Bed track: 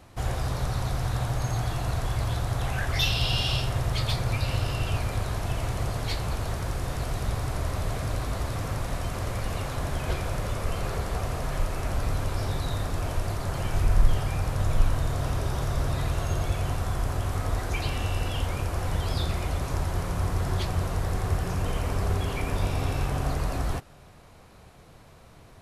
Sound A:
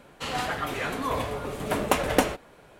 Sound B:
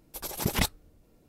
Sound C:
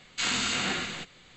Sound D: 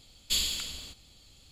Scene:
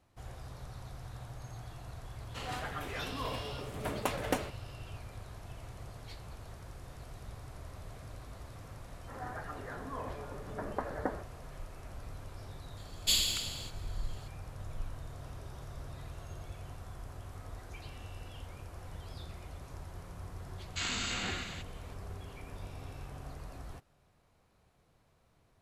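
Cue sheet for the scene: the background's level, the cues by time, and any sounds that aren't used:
bed track -18 dB
2.14 add A -10.5 dB
8.87 add A -12.5 dB + elliptic low-pass 1800 Hz
12.77 add D
20.58 add C -7.5 dB
not used: B

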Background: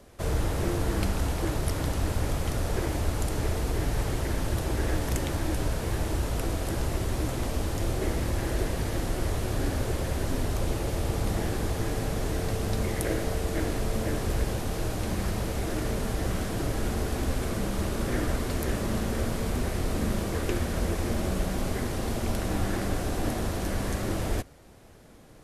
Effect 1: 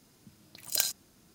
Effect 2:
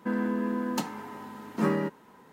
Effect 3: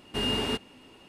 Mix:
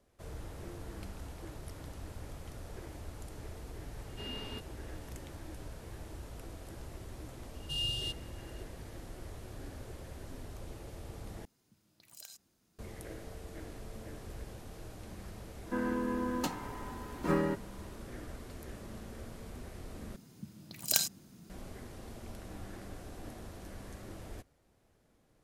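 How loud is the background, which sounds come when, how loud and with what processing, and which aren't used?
background -17.5 dB
4.03 add 3 -16 dB + resonant high shelf 6900 Hz -13 dB, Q 1.5
7.55 add 3 -4 dB + FFT band-reject 160–2700 Hz
11.45 replace with 1 -12.5 dB + compressor 3:1, threshold -36 dBFS
15.66 add 2 -2 dB + notch comb 220 Hz
20.16 replace with 1 -0.5 dB + bell 170 Hz +11.5 dB 1.6 oct

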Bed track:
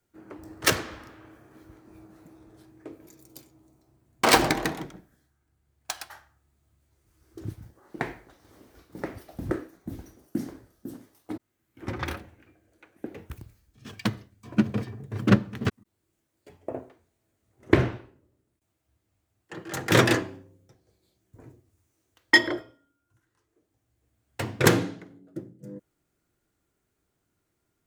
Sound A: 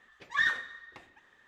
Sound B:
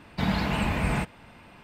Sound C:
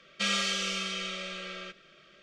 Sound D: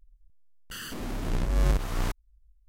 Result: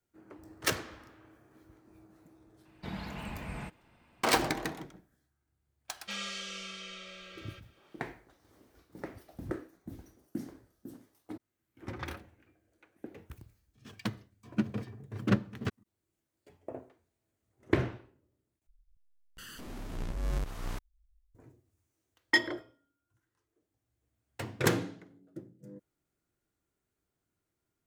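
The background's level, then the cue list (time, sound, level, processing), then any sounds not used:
bed track -8 dB
2.65 add B -14.5 dB
5.88 add C -10 dB
18.67 replace with D -9 dB
not used: A

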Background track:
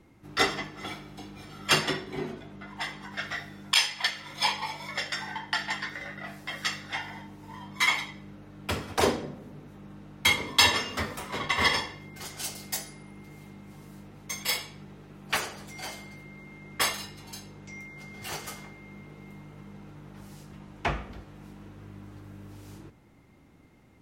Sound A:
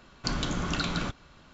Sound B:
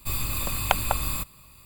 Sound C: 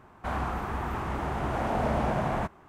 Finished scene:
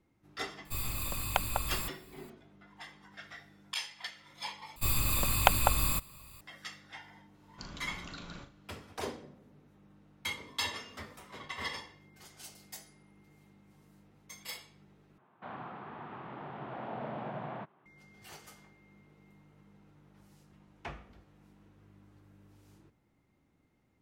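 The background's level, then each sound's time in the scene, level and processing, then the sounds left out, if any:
background track -14.5 dB
0.65 add B -7.5 dB
4.76 replace with B -1 dB
7.34 add A -16.5 dB + flutter echo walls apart 6.7 m, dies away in 0.3 s
15.18 replace with C -11.5 dB + elliptic band-pass 130–3600 Hz

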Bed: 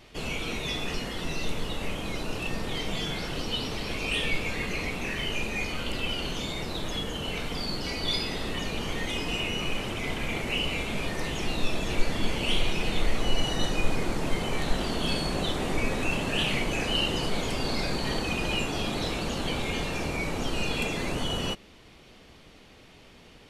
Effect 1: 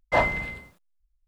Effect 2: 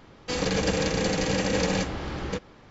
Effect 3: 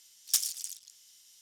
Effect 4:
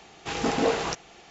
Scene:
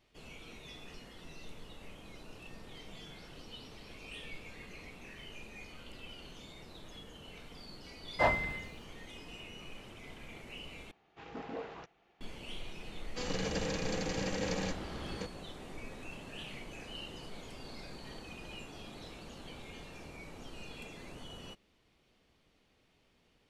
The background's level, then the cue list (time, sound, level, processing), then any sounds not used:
bed -18.5 dB
8.07 add 1 -6.5 dB
10.91 replace with 4 -18 dB + LPF 2700 Hz
12.88 add 2 -10.5 dB
not used: 3

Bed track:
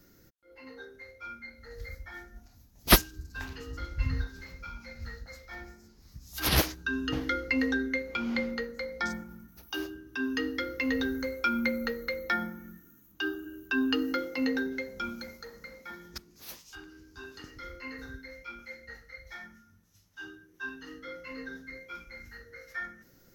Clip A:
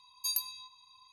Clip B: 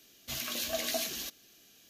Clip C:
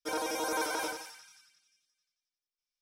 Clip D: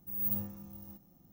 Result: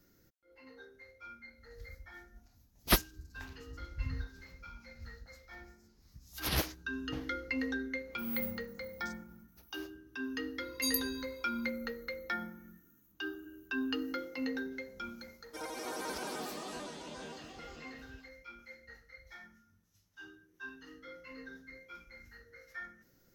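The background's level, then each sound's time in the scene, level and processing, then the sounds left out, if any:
bed track -7.5 dB
8.11 add D -6.5 dB
10.58 add A -1 dB
15.48 add C -9 dB + echoes that change speed 0.204 s, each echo -4 st, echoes 3
not used: B

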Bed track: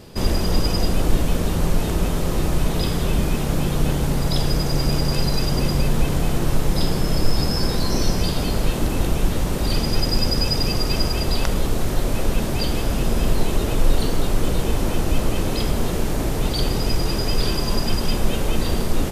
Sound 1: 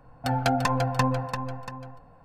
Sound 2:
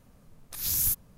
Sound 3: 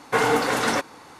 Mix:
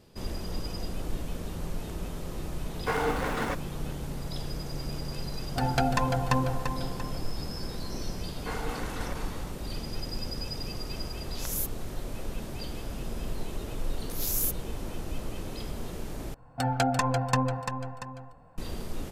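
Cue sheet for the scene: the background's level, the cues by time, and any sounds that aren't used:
bed track -15 dB
2.74 add 3 -8 dB + median filter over 9 samples
5.32 add 1 -2.5 dB
8.33 add 3 -17.5 dB + sustainer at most 27 dB/s
10.72 add 2 -6 dB + low-pass opened by the level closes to 1900 Hz, open at -22 dBFS
13.57 add 2 -3.5 dB
16.34 replace with 1 -2 dB + bell 7800 Hz +7.5 dB 0.43 oct

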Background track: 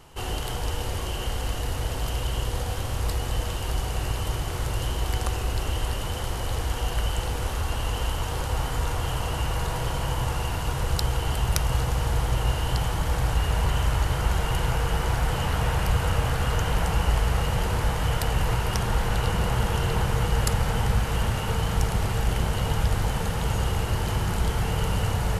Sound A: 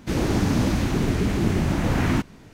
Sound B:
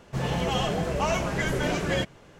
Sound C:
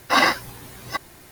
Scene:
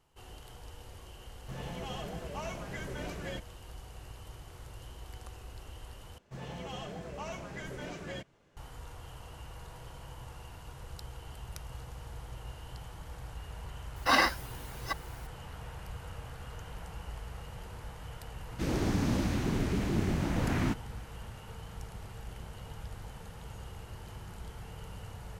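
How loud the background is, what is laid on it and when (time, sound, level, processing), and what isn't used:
background track -20 dB
1.35 add B -14 dB
6.18 replace with B -15 dB
13.96 add C -7.5 dB
18.52 add A -8.5 dB

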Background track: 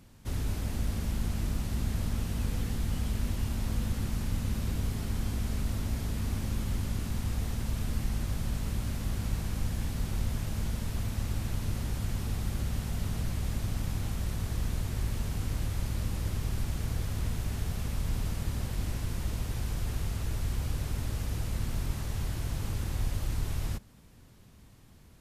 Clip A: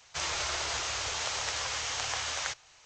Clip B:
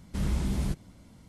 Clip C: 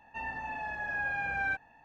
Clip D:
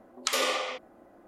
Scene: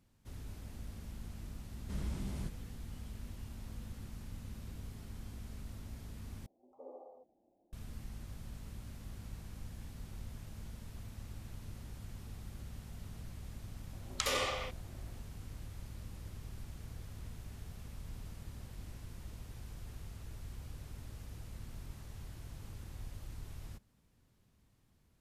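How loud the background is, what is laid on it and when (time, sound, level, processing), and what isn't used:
background track -15 dB
1.75 add B -11 dB
6.46 replace with D -18 dB + elliptic low-pass 830 Hz, stop band 50 dB
13.93 add D -6.5 dB
not used: A, C

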